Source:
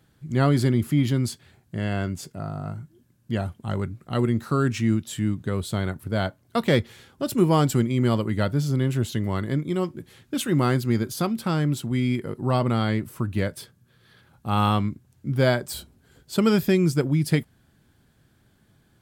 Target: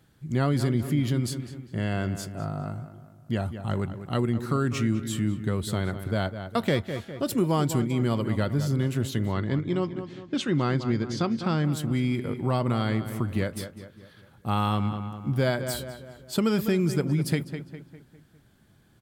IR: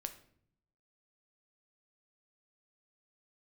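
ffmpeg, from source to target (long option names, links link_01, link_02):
-filter_complex "[0:a]asplit=2[link_01][link_02];[link_02]adelay=202,lowpass=frequency=3300:poles=1,volume=-12dB,asplit=2[link_03][link_04];[link_04]adelay=202,lowpass=frequency=3300:poles=1,volume=0.47,asplit=2[link_05][link_06];[link_06]adelay=202,lowpass=frequency=3300:poles=1,volume=0.47,asplit=2[link_07][link_08];[link_08]adelay=202,lowpass=frequency=3300:poles=1,volume=0.47,asplit=2[link_09][link_10];[link_10]adelay=202,lowpass=frequency=3300:poles=1,volume=0.47[link_11];[link_01][link_03][link_05][link_07][link_09][link_11]amix=inputs=6:normalize=0,acompressor=threshold=-22dB:ratio=2.5,asettb=1/sr,asplit=3[link_12][link_13][link_14];[link_12]atrim=end=9.324[link_15];[link_13]atrim=start=9.32:end=11.65,asetpts=PTS-STARTPTS,afade=type=in:duration=0.004:curve=qsin,afade=type=out:start_time=2.326:duration=0.004:curve=qsin,lowpass=frequency=6100:width=0.5412,lowpass=frequency=6100:width=1.3066[link_16];[link_14]atrim=start=11.646[link_17];[link_15][link_16]acrossfade=duration=0.004:curve1=hsin:curve2=qsin[link_18];[link_18][link_17]acrossfade=duration=0.004:curve1=qsin:curve2=hsin"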